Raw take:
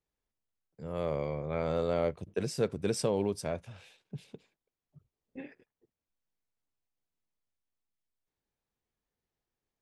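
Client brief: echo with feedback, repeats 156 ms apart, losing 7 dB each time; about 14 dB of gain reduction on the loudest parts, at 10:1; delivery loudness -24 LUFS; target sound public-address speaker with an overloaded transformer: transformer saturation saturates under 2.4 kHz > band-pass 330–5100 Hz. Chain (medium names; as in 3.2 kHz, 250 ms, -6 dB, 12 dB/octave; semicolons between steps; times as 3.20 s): compression 10:1, threshold -39 dBFS; feedback delay 156 ms, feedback 45%, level -7 dB; transformer saturation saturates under 2.4 kHz; band-pass 330–5100 Hz; trim +27.5 dB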